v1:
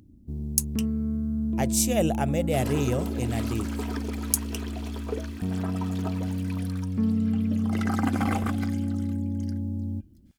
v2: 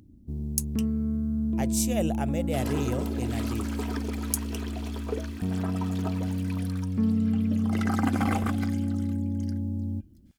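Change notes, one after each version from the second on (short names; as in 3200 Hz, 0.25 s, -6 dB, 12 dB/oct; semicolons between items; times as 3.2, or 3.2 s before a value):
speech -4.5 dB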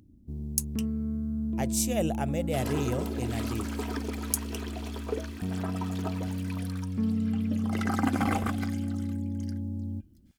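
first sound -3.5 dB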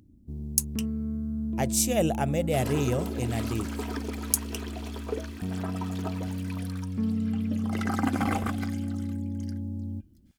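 speech +4.0 dB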